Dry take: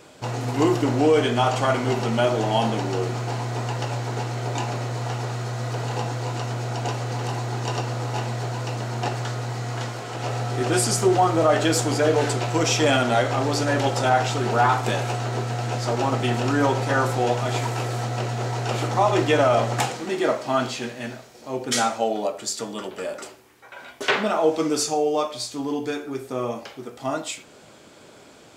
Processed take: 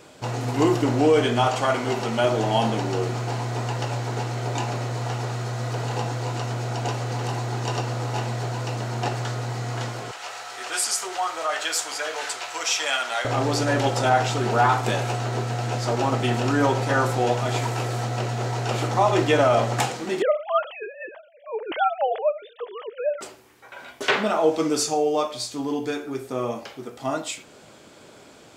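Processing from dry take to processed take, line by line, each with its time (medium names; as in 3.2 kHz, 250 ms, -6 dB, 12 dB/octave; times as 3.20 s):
1.47–2.24 s: bass shelf 200 Hz -7.5 dB
10.11–13.25 s: high-pass 1.1 kHz
20.22–23.21 s: formants replaced by sine waves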